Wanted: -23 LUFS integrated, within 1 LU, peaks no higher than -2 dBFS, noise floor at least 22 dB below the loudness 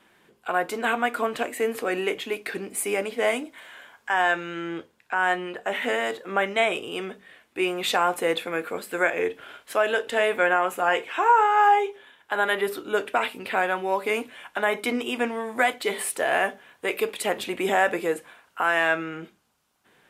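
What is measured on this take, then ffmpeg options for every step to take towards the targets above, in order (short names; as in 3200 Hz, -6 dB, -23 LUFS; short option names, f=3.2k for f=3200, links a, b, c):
loudness -25.0 LUFS; peak -8.5 dBFS; loudness target -23.0 LUFS
-> -af "volume=2dB"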